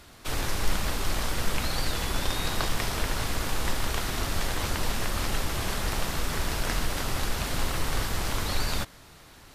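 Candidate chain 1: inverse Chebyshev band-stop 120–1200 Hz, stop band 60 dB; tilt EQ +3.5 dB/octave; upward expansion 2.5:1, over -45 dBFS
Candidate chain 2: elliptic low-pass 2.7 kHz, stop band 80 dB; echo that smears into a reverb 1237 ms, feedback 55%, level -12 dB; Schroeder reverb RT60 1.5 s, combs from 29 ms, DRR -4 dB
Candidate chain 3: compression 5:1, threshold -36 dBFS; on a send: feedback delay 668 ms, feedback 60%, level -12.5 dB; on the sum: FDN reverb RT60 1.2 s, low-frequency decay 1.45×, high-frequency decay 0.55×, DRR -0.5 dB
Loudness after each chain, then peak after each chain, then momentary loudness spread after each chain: -29.0 LUFS, -27.5 LUFS, -37.5 LUFS; -10.5 dBFS, -9.5 dBFS, -21.5 dBFS; 3 LU, 2 LU, 2 LU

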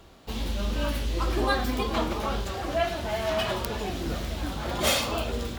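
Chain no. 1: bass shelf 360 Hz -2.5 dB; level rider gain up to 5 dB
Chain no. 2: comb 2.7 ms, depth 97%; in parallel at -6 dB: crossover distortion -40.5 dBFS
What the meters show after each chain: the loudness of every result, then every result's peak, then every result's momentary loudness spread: -24.5 LUFS, -22.0 LUFS; -5.5 dBFS, -4.5 dBFS; 8 LU, 7 LU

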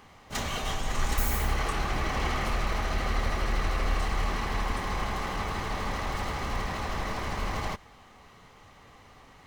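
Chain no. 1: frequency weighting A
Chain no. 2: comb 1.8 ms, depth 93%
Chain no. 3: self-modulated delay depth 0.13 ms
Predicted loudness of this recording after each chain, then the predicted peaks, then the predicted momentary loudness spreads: -33.0 LUFS, -27.5 LUFS, -31.5 LUFS; -19.0 dBFS, -10.5 dBFS, -13.5 dBFS; 3 LU, 4 LU, 3 LU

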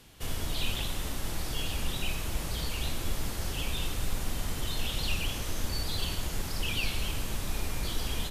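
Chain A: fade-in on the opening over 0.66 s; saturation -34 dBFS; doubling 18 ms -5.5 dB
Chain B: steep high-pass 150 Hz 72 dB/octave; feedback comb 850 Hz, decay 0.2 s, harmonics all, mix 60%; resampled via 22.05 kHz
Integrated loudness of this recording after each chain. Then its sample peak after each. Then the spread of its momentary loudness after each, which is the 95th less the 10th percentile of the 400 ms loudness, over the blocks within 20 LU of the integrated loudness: -39.0 LUFS, -43.0 LUFS; -30.5 dBFS, -28.5 dBFS; 3 LU, 5 LU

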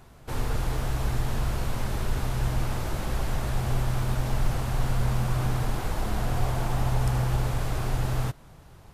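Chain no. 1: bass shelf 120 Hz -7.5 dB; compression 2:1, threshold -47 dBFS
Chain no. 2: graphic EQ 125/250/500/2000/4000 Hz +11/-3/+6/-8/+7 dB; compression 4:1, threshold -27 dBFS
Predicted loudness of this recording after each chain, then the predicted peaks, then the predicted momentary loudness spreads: -43.0 LUFS, -30.5 LUFS; -28.0 dBFS, -18.5 dBFS; 2 LU, 4 LU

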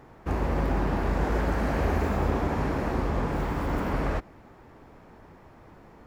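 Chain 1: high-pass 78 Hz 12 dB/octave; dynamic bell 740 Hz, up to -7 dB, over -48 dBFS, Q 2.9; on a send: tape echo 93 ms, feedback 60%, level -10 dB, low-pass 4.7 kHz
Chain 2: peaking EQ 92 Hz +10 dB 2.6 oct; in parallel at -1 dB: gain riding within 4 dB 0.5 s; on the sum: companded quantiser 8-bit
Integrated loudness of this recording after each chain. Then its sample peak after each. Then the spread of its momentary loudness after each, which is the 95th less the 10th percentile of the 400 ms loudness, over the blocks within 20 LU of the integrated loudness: -29.5 LUFS, -17.0 LUFS; -15.5 dBFS, -1.5 dBFS; 5 LU, 3 LU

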